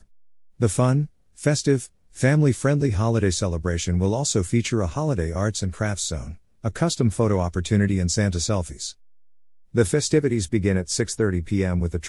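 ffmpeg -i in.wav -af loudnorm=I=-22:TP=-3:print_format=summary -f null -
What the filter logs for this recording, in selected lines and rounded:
Input Integrated:    -22.9 LUFS
Input True Peak:      -5.2 dBTP
Input LRA:             1.5 LU
Input Threshold:     -33.2 LUFS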